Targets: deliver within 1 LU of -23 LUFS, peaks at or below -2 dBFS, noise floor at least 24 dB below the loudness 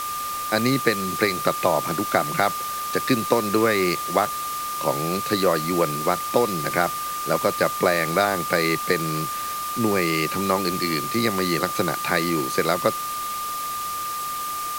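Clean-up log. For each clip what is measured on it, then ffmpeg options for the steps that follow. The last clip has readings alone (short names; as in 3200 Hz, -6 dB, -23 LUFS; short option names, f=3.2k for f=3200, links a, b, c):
steady tone 1200 Hz; tone level -27 dBFS; noise floor -29 dBFS; noise floor target -47 dBFS; loudness -23.0 LUFS; peak -4.0 dBFS; loudness target -23.0 LUFS
-> -af "bandreject=f=1.2k:w=30"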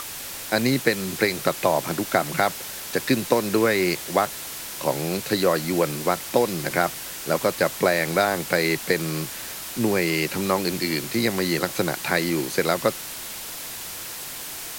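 steady tone none; noise floor -35 dBFS; noise floor target -48 dBFS
-> -af "afftdn=nr=13:nf=-35"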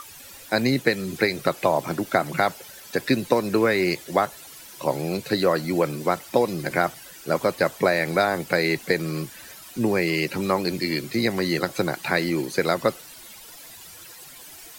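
noise floor -44 dBFS; noise floor target -48 dBFS
-> -af "afftdn=nr=6:nf=-44"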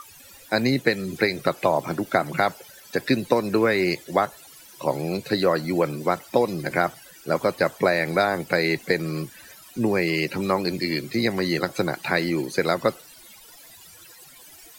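noise floor -48 dBFS; loudness -24.0 LUFS; peak -4.5 dBFS; loudness target -23.0 LUFS
-> -af "volume=1dB"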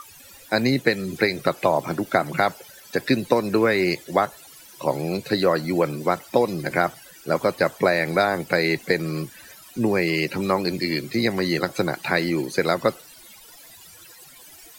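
loudness -23.0 LUFS; peak -3.5 dBFS; noise floor -47 dBFS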